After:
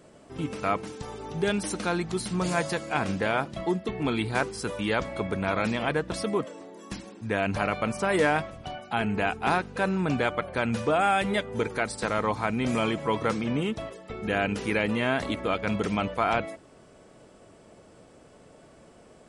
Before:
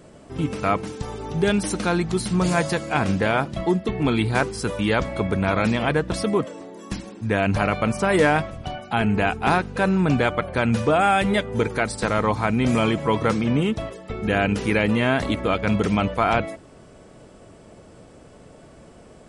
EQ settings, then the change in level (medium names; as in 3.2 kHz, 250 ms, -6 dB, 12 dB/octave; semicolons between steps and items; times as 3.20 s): bass shelf 170 Hz -7 dB; -4.5 dB